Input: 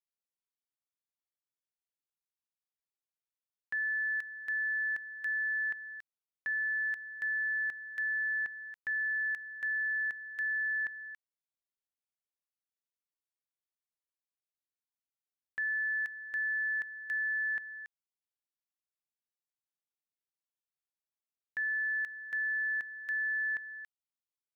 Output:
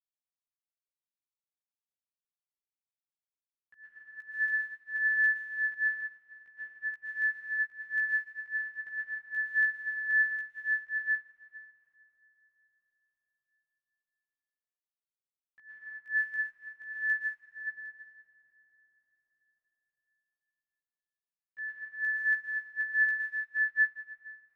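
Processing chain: 17.33–17.73 Chebyshev low-pass 800 Hz, order 4; chorus voices 2, 0.43 Hz, delay 16 ms, depth 1 ms; reverb RT60 5.7 s, pre-delay 0.11 s, DRR -7.5 dB; upward expander 2.5:1, over -42 dBFS; gain +4 dB

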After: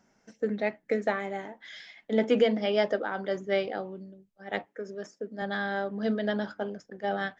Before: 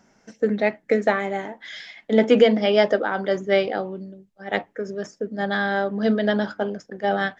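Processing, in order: 4.65–5.42 HPF 190 Hz 12 dB/oct; gain -8 dB

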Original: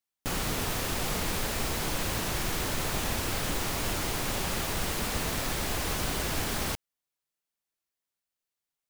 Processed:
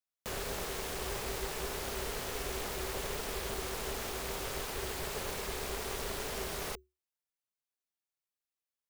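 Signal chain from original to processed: frequency shift +150 Hz; ring modulator 220 Hz; gain -4.5 dB

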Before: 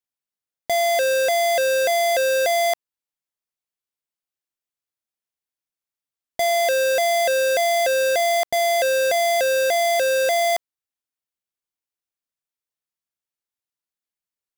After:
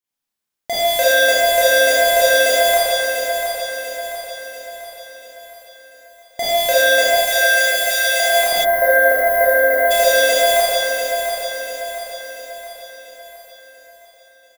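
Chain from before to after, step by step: 7.12–8.2 HPF 1300 Hz 12 dB/oct; feedback echo 0.69 s, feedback 50%, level -7 dB; Schroeder reverb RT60 2 s, combs from 29 ms, DRR -10 dB; 8.64–9.91 spectral gain 2100–11000 Hz -29 dB; gain -1 dB

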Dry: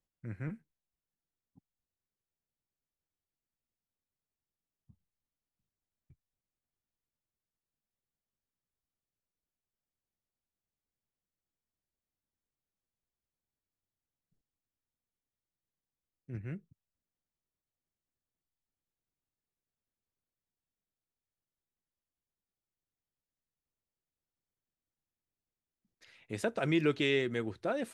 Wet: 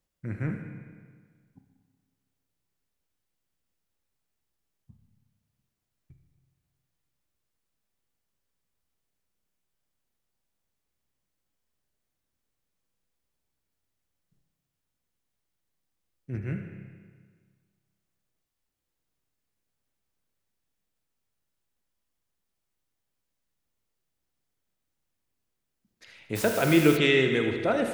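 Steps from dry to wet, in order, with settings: thin delay 78 ms, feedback 56%, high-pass 1600 Hz, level -9 dB; 26.35–26.96 added noise white -45 dBFS; spring tank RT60 1.7 s, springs 30/46 ms, chirp 50 ms, DRR 5 dB; gain +7.5 dB

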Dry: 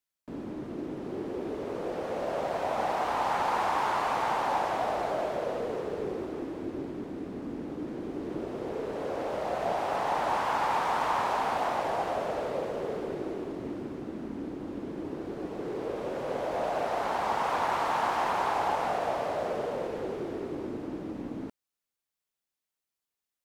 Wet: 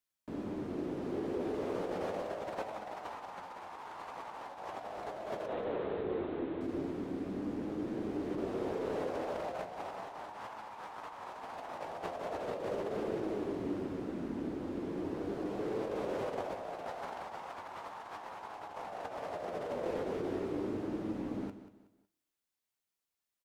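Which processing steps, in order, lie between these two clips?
5.46–6.61 elliptic low-pass 3800 Hz, stop band 40 dB; negative-ratio compressor -34 dBFS, ratio -0.5; flange 0.38 Hz, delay 9.1 ms, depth 3.1 ms, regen +64%; feedback echo 0.185 s, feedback 33%, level -13.5 dB; Schroeder reverb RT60 1 s, combs from 26 ms, DRR 19 dB

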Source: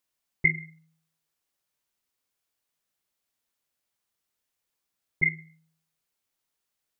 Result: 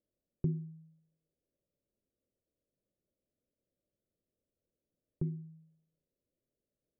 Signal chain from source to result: elliptic low-pass 590 Hz, stop band 40 dB; in parallel at +2.5 dB: compressor, threshold -50 dBFS, peak gain reduction 19.5 dB

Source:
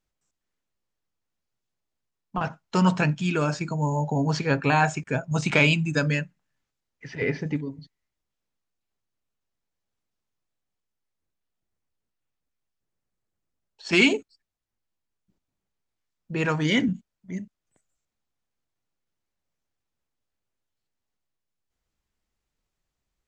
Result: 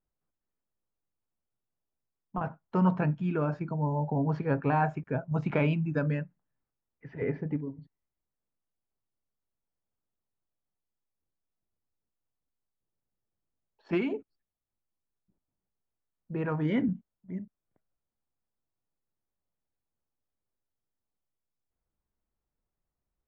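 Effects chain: LPF 1200 Hz 12 dB/oct; 13.97–16.52 compressor, threshold -23 dBFS, peak gain reduction 6.5 dB; gain -4 dB

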